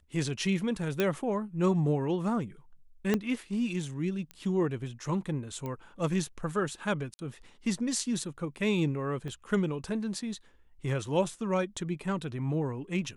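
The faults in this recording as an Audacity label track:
1.000000	1.000000	pop -14 dBFS
3.140000	3.140000	pop -13 dBFS
4.310000	4.310000	pop -26 dBFS
5.660000	5.660000	pop -24 dBFS
7.140000	7.190000	gap 50 ms
9.280000	9.280000	gap 2.4 ms

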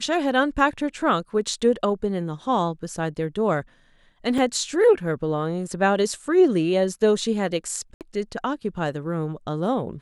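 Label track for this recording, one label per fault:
4.380000	4.380000	gap 3 ms
7.940000	8.010000	gap 68 ms

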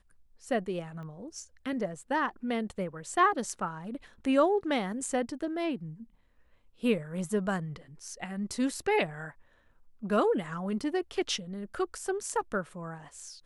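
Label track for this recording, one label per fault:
1.030000	1.030000	pop -35 dBFS

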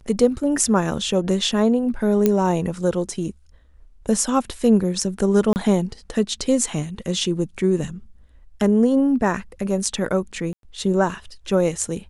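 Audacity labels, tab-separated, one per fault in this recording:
2.260000	2.260000	pop -5 dBFS
5.530000	5.560000	gap 29 ms
10.530000	10.630000	gap 0.102 s

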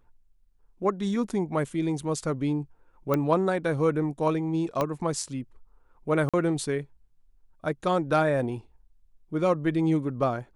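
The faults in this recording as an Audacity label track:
3.140000	3.140000	pop -13 dBFS
4.810000	4.810000	pop -13 dBFS
6.290000	6.340000	gap 46 ms

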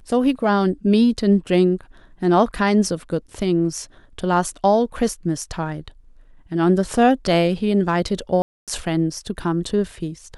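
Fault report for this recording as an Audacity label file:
8.420000	8.680000	gap 0.257 s

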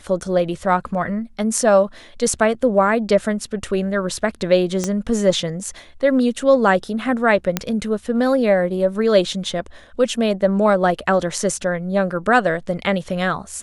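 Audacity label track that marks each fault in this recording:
4.840000	4.840000	pop -9 dBFS
7.570000	7.570000	pop -3 dBFS

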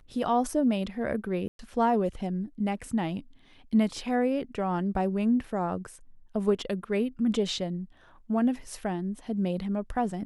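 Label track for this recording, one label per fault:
1.480000	1.590000	gap 0.112 s

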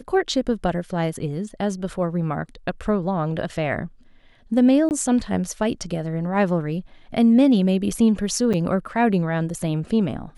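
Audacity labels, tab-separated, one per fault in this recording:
4.890000	4.910000	gap 19 ms
8.530000	8.540000	gap 6.9 ms

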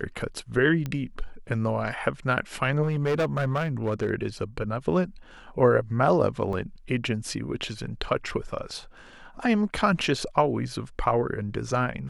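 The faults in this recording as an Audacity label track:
0.860000	0.860000	pop -18 dBFS
2.820000	4.110000	clipped -20.5 dBFS
6.530000	6.530000	gap 2.3 ms

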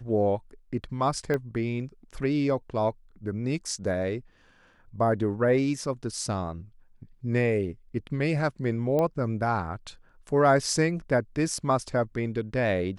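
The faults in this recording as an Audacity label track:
1.340000	1.340000	pop -17 dBFS
8.990000	8.990000	pop -16 dBFS

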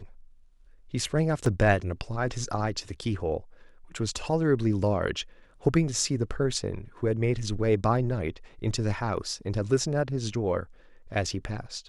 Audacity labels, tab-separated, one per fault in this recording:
1.460000	1.460000	gap 2.5 ms

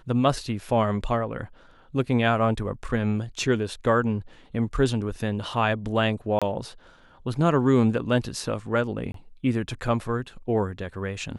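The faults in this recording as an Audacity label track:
6.390000	6.420000	gap 26 ms
9.120000	9.140000	gap 23 ms

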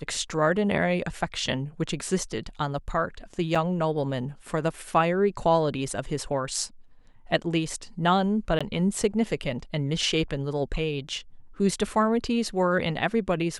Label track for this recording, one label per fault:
3.550000	3.550000	gap 4.8 ms
8.590000	8.610000	gap 16 ms

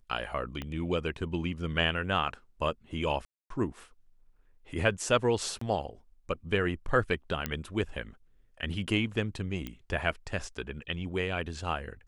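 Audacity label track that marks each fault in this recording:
0.620000	0.620000	pop -22 dBFS
3.250000	3.500000	gap 0.253 s
5.590000	5.610000	gap 24 ms
7.460000	7.460000	pop -14 dBFS
9.670000	9.670000	pop -22 dBFS

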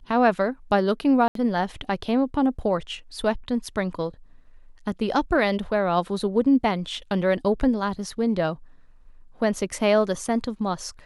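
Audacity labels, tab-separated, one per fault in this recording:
1.280000	1.350000	gap 73 ms

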